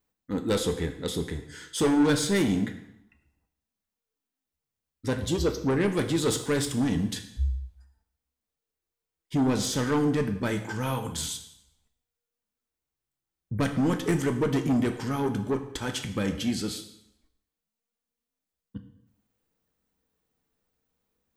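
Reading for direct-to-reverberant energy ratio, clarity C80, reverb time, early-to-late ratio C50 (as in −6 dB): 6.0 dB, 13.0 dB, 0.75 s, 10.5 dB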